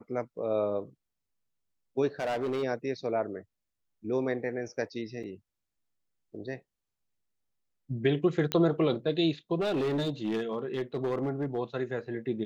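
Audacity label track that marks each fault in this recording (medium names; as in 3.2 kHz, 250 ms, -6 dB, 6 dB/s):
2.200000	2.640000	clipped -27 dBFS
5.230000	5.240000	dropout 5.9 ms
8.520000	8.520000	pop -13 dBFS
9.600000	11.590000	clipped -25.5 dBFS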